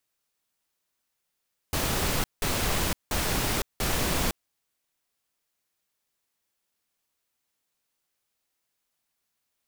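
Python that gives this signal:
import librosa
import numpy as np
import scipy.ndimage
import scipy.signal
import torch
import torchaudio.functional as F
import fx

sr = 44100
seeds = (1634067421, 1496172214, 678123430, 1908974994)

y = fx.noise_burst(sr, seeds[0], colour='pink', on_s=0.51, off_s=0.18, bursts=4, level_db=-26.5)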